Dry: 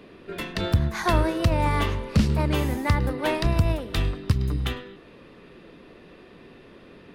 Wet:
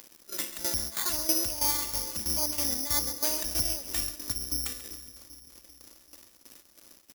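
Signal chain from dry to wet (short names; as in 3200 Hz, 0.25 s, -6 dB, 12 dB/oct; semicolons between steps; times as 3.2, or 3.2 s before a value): low shelf 220 Hz -7 dB; comb 3.5 ms, depth 87%; in parallel at +1 dB: compressor, threshold -36 dBFS, peak gain reduction 18 dB; on the sum: limiter -14.5 dBFS, peak gain reduction 6.5 dB; upward compressor, threshold -42 dBFS; flange 0.55 Hz, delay 2 ms, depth 1.9 ms, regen +85%; crossover distortion -45 dBFS; tremolo saw down 3.1 Hz, depth 80%; on a send: split-band echo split 570 Hz, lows 0.39 s, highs 0.136 s, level -13 dB; on the sum: careless resampling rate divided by 8×, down none, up zero stuff; gain -6 dB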